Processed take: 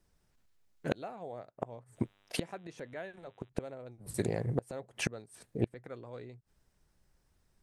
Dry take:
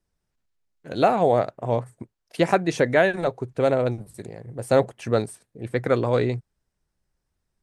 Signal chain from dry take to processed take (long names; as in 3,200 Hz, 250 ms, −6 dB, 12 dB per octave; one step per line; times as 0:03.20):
gate with flip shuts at −21 dBFS, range −30 dB
0:01.95–0:03.48: hum with harmonics 100 Hz, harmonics 39, −77 dBFS −1 dB per octave
level +5.5 dB